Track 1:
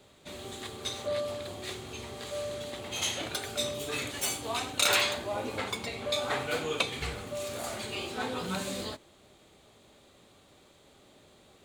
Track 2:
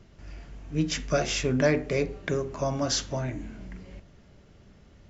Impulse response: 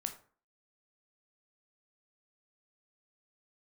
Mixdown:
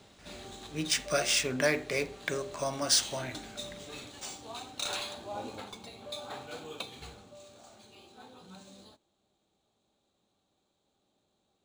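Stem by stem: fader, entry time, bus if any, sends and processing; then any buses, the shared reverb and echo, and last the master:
5.43 s -1.5 dB -> 5.72 s -12 dB -> 7.04 s -12 dB -> 7.63 s -20 dB, 0.00 s, no send, thirty-one-band EQ 200 Hz +6 dB, 315 Hz +3 dB, 800 Hz +6 dB, 2000 Hz -7 dB, 4000 Hz +7 dB, 8000 Hz +9 dB; auto duck -10 dB, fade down 0.90 s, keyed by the second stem
-2.0 dB, 0.00 s, no send, tilt +3.5 dB/oct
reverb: off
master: decimation joined by straight lines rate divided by 3×

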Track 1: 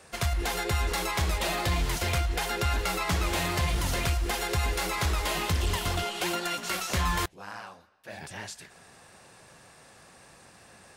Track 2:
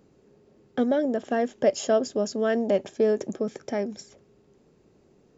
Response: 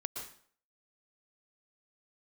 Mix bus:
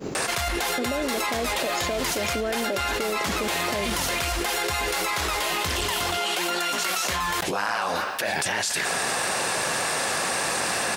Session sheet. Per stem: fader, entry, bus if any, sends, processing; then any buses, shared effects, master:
-1.5 dB, 0.15 s, no send, low shelf 210 Hz -9.5 dB
-3.5 dB, 0.00 s, no send, expander -53 dBFS; compressor, threshold -24 dBFS, peak gain reduction 9 dB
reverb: off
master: low shelf 150 Hz -8.5 dB; fast leveller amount 100%

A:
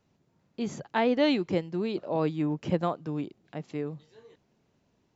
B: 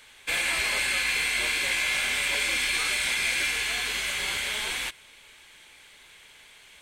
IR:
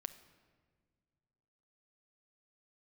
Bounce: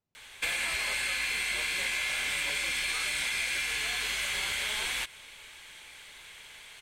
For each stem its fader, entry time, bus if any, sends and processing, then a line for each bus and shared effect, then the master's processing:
-18.5 dB, 0.00 s, no send, negative-ratio compressor -29 dBFS
+3.0 dB, 0.15 s, no send, dry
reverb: off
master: bell 290 Hz -4 dB 1.5 oct; compressor 5:1, threshold -29 dBFS, peak gain reduction 8.5 dB

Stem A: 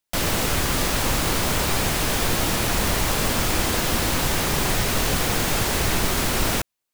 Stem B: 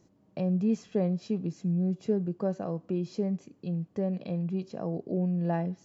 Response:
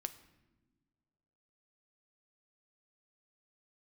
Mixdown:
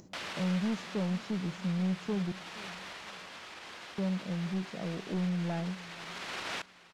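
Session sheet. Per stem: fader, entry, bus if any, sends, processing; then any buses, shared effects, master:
-6.5 dB, 0.00 s, send -11.5 dB, echo send -19 dB, LPF 3600 Hz 12 dB/oct; limiter -17 dBFS, peak gain reduction 7 dB; HPF 1400 Hz 6 dB/oct; auto duck -15 dB, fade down 1.30 s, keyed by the second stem
-6.0 dB, 0.00 s, muted 2.32–3.98, send -11 dB, echo send -18 dB, bell 190 Hz +5.5 dB 0.27 oct; upward compressor, threshold -41 dBFS; soft clip -22.5 dBFS, distortion -16 dB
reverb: on, pre-delay 5 ms
echo: feedback echo 0.475 s, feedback 32%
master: dry

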